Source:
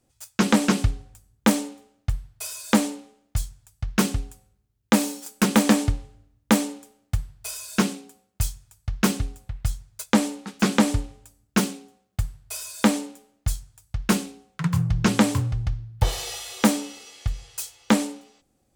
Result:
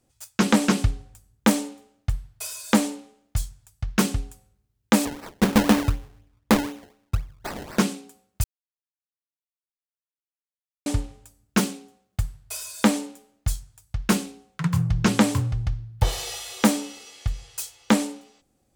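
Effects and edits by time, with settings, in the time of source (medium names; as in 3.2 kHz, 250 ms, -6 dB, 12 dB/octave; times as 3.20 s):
5.05–7.79 s: decimation with a swept rate 26× 4 Hz
8.44–10.86 s: mute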